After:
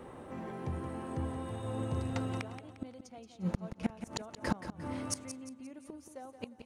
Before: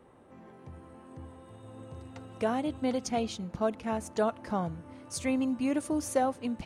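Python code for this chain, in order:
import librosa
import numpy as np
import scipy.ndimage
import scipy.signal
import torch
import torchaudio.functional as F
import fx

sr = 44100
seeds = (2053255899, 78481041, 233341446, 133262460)

p1 = fx.gate_flip(x, sr, shuts_db=-28.0, range_db=-30)
p2 = p1 + fx.echo_feedback(p1, sr, ms=176, feedback_pct=38, wet_db=-10.0, dry=0)
y = F.gain(torch.from_numpy(p2), 9.5).numpy()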